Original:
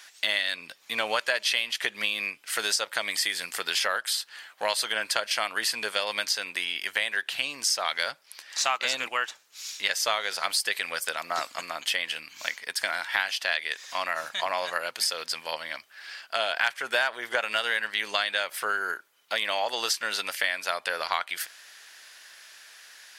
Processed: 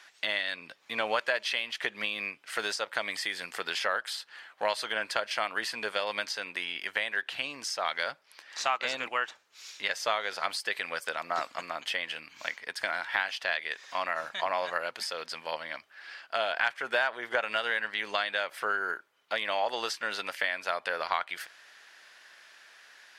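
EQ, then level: LPF 1900 Hz 6 dB/oct; 0.0 dB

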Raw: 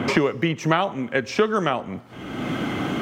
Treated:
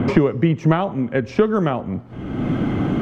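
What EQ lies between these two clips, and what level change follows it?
tilt -3.5 dB/oct; -1.0 dB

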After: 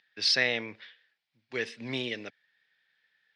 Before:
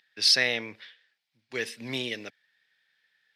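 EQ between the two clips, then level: air absorption 110 m; 0.0 dB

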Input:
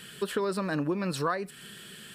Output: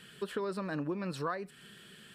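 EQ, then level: high shelf 5600 Hz -8 dB; -6.0 dB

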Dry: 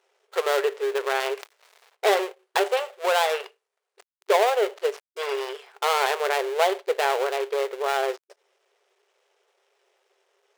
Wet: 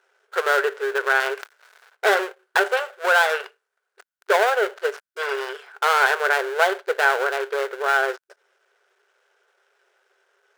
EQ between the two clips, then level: bell 1500 Hz +15 dB 0.37 oct; 0.0 dB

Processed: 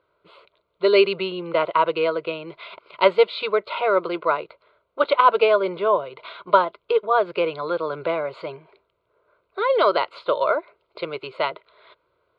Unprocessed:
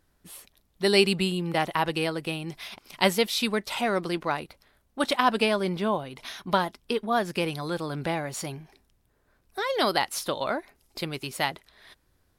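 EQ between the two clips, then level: speaker cabinet 420–4600 Hz, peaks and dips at 450 Hz +3 dB, 640 Hz +5 dB, 930 Hz +9 dB, 1400 Hz +7 dB, 2100 Hz +8 dB, 4300 Hz +8 dB; tilt -4 dB/oct; fixed phaser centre 1200 Hz, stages 8; +4.0 dB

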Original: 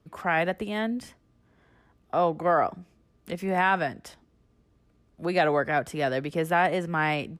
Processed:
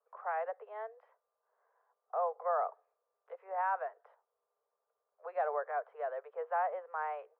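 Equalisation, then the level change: steep high-pass 440 Hz 96 dB/oct; ladder low-pass 1400 Hz, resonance 35%; -4.0 dB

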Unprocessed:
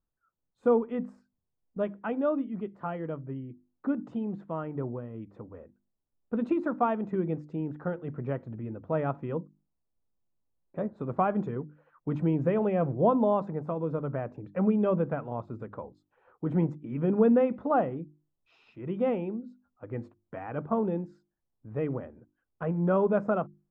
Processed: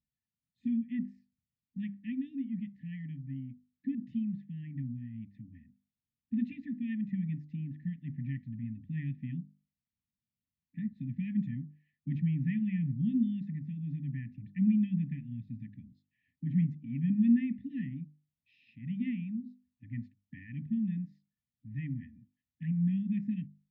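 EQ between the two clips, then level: HPF 82 Hz; brick-wall FIR band-stop 280–1700 Hz; air absorption 180 m; 0.0 dB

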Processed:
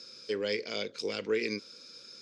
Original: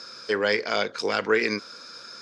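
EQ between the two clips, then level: band shelf 1100 Hz -12 dB; -6.5 dB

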